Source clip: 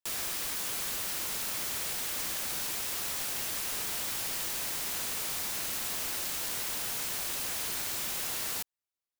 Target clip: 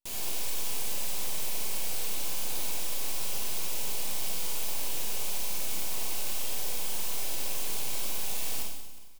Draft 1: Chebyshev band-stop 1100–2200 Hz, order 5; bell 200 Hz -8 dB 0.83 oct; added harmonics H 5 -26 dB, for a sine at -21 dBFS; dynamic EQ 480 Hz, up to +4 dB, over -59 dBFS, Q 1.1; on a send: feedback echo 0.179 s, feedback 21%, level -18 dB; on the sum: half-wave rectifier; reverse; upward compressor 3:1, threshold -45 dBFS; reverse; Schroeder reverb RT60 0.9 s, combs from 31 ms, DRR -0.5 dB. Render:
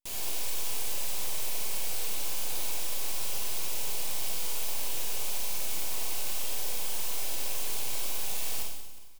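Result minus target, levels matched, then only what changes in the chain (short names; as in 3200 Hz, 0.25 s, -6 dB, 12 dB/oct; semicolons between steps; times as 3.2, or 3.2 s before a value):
250 Hz band -3.0 dB
remove: bell 200 Hz -8 dB 0.83 oct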